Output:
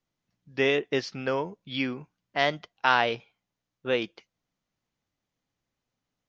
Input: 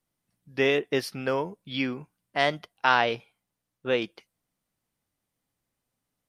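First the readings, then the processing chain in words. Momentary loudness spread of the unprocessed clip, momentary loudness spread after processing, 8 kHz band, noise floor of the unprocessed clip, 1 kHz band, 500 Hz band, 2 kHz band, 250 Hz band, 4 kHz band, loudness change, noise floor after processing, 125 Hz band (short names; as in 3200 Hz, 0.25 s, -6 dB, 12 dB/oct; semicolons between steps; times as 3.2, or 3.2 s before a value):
15 LU, 15 LU, n/a, -84 dBFS, -1.0 dB, -1.0 dB, -0.5 dB, -1.0 dB, 0.0 dB, -0.5 dB, under -85 dBFS, -1.0 dB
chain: elliptic low-pass 6700 Hz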